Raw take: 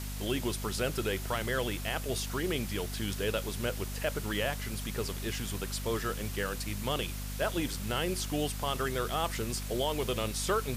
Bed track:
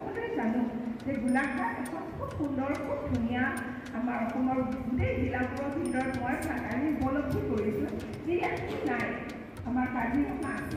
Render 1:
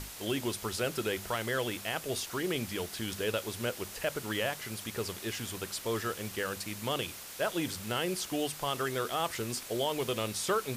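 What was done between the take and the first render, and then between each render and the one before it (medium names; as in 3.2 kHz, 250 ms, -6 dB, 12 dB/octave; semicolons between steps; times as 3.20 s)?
hum notches 50/100/150/200/250 Hz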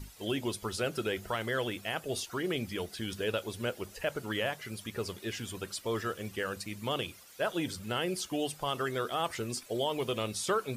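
noise reduction 13 dB, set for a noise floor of -45 dBFS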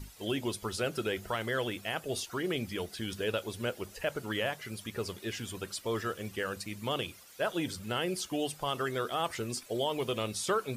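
no audible change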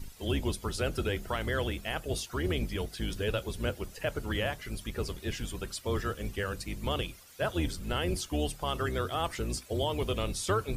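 octave divider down 2 oct, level +4 dB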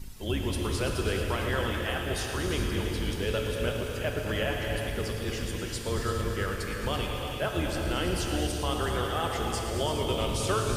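on a send: multi-head delay 111 ms, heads all three, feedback 62%, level -14 dB; on the sum: gated-style reverb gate 450 ms flat, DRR 1.5 dB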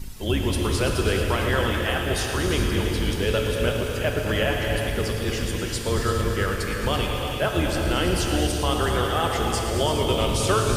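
trim +6.5 dB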